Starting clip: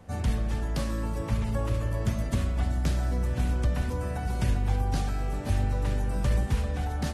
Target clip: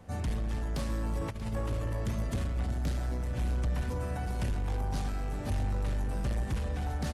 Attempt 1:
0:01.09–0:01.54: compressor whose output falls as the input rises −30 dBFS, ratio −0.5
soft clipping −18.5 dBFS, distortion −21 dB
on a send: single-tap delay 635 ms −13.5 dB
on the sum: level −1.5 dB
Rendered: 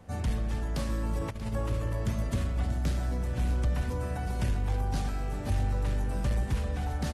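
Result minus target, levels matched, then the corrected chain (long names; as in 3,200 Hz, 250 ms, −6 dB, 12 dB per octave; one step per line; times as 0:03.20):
soft clipping: distortion −8 dB
0:01.09–0:01.54: compressor whose output falls as the input rises −30 dBFS, ratio −0.5
soft clipping −25 dBFS, distortion −13 dB
on a send: single-tap delay 635 ms −13.5 dB
on the sum: level −1.5 dB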